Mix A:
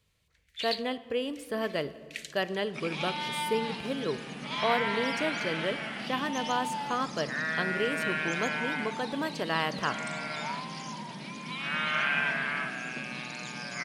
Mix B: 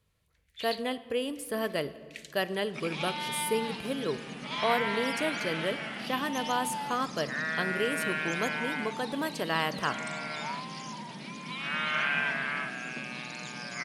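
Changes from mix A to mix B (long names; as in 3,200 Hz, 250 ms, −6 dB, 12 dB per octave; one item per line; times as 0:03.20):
speech: add parametric band 11,000 Hz +12.5 dB 0.68 octaves
first sound −5.5 dB
second sound: send −6.5 dB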